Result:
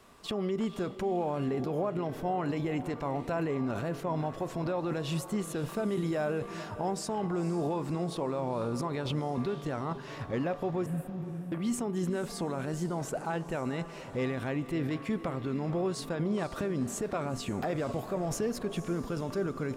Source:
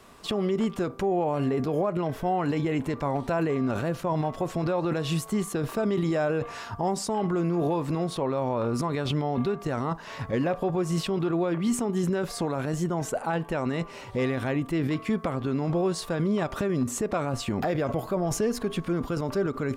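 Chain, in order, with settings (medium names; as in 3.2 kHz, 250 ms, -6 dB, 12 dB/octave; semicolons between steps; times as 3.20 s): 10.86–11.52 s: inverse Chebyshev band-stop 510–4900 Hz, stop band 50 dB; echo that smears into a reverb 499 ms, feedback 45%, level -13 dB; trim -5.5 dB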